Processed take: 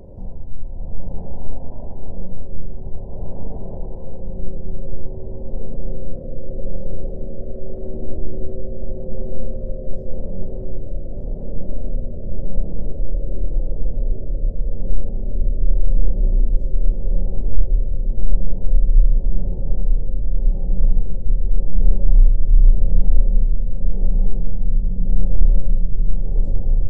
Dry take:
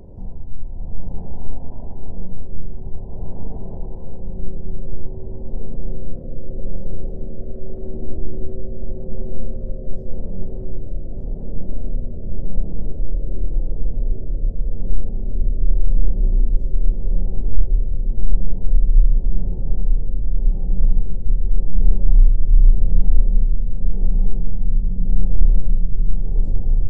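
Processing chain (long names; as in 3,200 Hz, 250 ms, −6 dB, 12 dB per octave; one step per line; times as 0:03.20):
parametric band 560 Hz +7 dB 0.44 octaves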